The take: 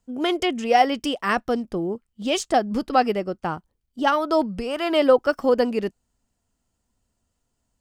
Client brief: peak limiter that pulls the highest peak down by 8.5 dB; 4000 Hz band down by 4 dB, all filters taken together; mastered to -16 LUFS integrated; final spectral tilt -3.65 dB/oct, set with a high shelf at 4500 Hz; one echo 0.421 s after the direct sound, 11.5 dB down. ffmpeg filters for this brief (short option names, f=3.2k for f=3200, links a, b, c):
-af "equalizer=f=4k:t=o:g=-3,highshelf=f=4.5k:g=-6,alimiter=limit=-14dB:level=0:latency=1,aecho=1:1:421:0.266,volume=9.5dB"